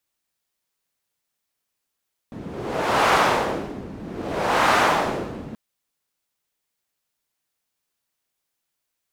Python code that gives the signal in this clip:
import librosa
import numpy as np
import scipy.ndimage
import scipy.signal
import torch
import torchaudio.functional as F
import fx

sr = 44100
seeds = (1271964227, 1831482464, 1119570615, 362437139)

y = fx.wind(sr, seeds[0], length_s=3.23, low_hz=220.0, high_hz=1100.0, q=1.1, gusts=2, swing_db=18)